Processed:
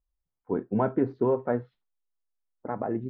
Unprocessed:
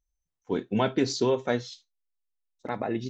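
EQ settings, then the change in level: low-pass 1.4 kHz 24 dB/octave; 0.0 dB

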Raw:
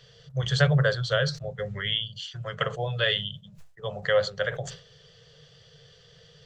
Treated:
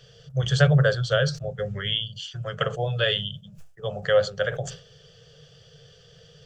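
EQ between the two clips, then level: graphic EQ with 31 bands 1 kHz -8 dB, 2 kHz -8 dB, 4 kHz -7 dB; +3.5 dB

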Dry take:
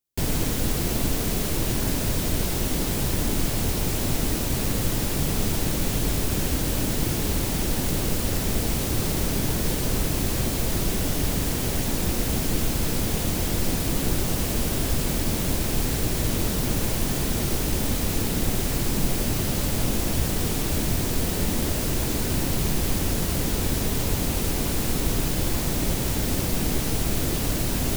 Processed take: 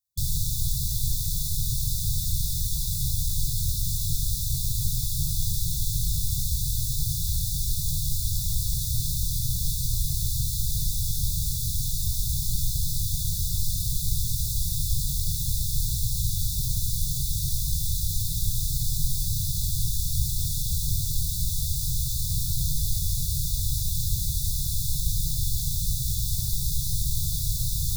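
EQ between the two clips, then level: brick-wall FIR band-stop 160–3400 Hz; 0.0 dB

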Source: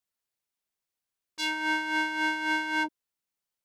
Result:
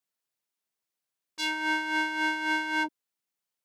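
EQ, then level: high-pass 120 Hz; 0.0 dB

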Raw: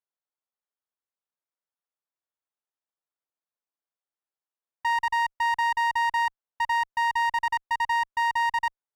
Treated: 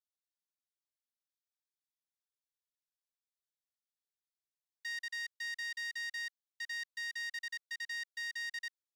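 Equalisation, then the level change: steep high-pass 1.9 kHz 48 dB/octave; Butterworth band-stop 2.4 kHz, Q 1.3; treble shelf 6.4 kHz -11.5 dB; +2.5 dB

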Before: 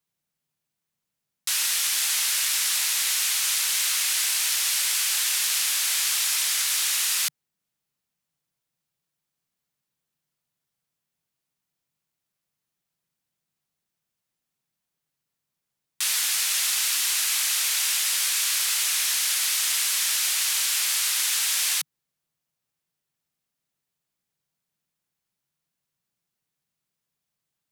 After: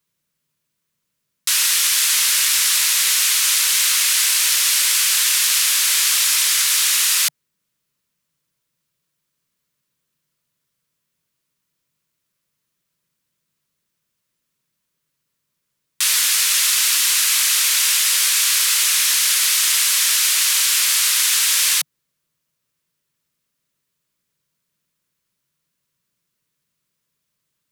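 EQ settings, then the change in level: Butterworth band-stop 770 Hz, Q 3.5; +7.5 dB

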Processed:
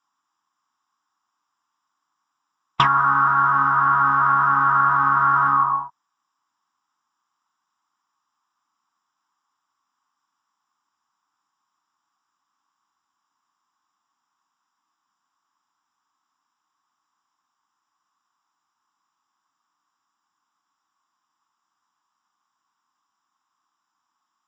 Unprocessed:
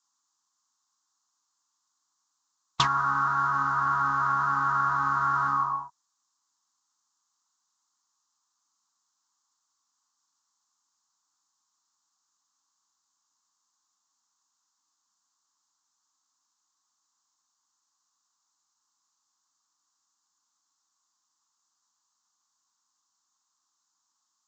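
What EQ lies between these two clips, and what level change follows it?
Savitzky-Golay filter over 25 samples; bass shelf 78 Hz -9.5 dB; peaking EQ 510 Hz -3.5 dB 0.77 oct; +8.5 dB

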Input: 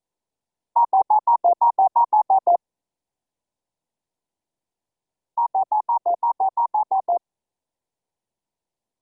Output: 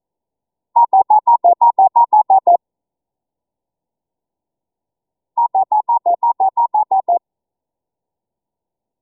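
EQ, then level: brick-wall FIR low-pass 1 kHz; +6.5 dB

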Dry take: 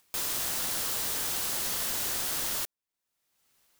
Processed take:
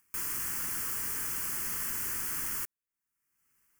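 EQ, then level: static phaser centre 1.6 kHz, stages 4; -1.5 dB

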